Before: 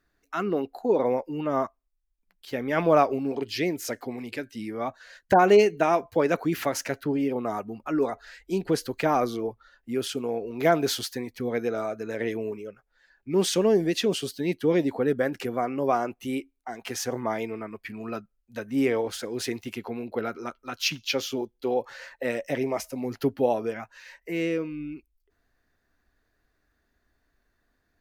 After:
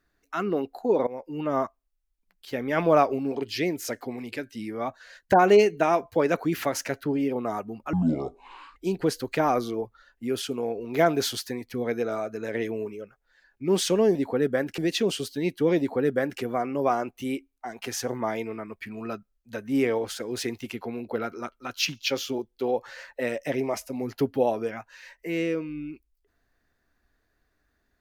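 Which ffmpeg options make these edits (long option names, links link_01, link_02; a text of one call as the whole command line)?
ffmpeg -i in.wav -filter_complex "[0:a]asplit=6[link_01][link_02][link_03][link_04][link_05][link_06];[link_01]atrim=end=1.07,asetpts=PTS-STARTPTS,afade=type=out:start_time=1.066:duration=0.004:curve=hsin:silence=0.1[link_07];[link_02]atrim=start=1.07:end=7.934,asetpts=PTS-STARTPTS,afade=type=in:duration=0.35:silence=0.1[link_08];[link_03]atrim=start=7.93:end=8.42,asetpts=PTS-STARTPTS,asetrate=26019,aresample=44100,atrim=end_sample=36625,asetpts=PTS-STARTPTS[link_09];[link_04]atrim=start=8.416:end=13.812[link_10];[link_05]atrim=start=14.808:end=15.442[link_11];[link_06]atrim=start=13.808[link_12];[link_07][link_08]concat=n=2:v=0:a=1[link_13];[link_13][link_09]acrossfade=duration=0.004:curve1=hsin:curve2=hsin[link_14];[link_14][link_10]acrossfade=duration=0.004:curve1=hsin:curve2=hsin[link_15];[link_15][link_11]acrossfade=duration=0.004:curve1=hsin:curve2=hsin[link_16];[link_16][link_12]acrossfade=duration=0.004:curve1=hsin:curve2=hsin" out.wav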